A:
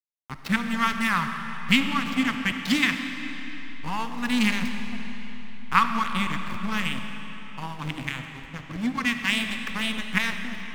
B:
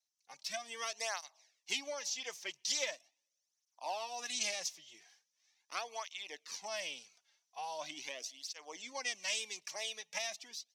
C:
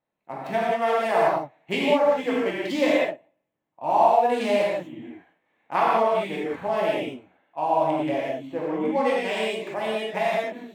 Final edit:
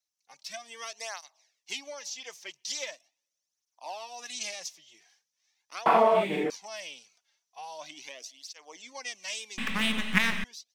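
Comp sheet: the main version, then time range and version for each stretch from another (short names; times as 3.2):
B
5.86–6.5 from C
9.58–10.44 from A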